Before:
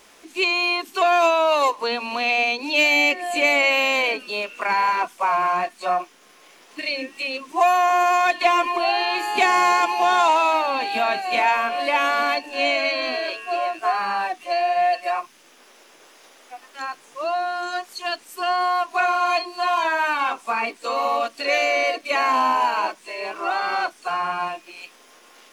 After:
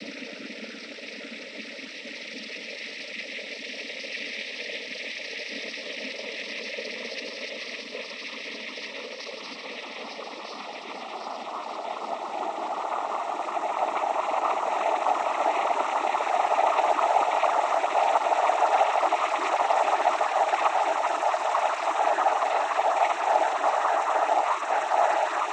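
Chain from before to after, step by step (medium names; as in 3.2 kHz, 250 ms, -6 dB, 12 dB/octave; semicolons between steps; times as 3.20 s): Paulstretch 30×, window 0.50 s, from 7.08 s; flutter echo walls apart 9.4 m, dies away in 0.4 s; noise-vocoded speech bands 12; trim -7 dB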